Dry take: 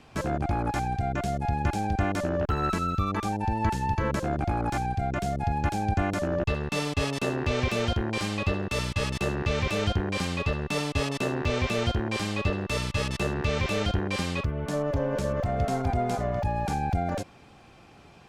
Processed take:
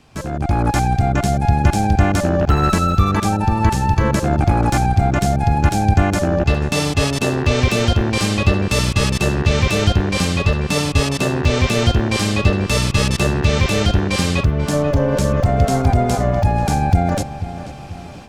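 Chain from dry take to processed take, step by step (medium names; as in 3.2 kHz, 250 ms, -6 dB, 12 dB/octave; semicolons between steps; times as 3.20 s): tone controls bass +4 dB, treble +6 dB; level rider gain up to 11.5 dB; filtered feedback delay 488 ms, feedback 50%, low-pass 3.6 kHz, level -13 dB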